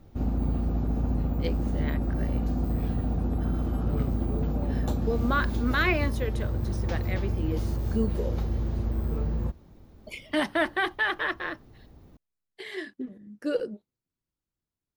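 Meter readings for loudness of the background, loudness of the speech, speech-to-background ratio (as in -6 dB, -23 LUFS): -29.5 LUFS, -31.0 LUFS, -1.5 dB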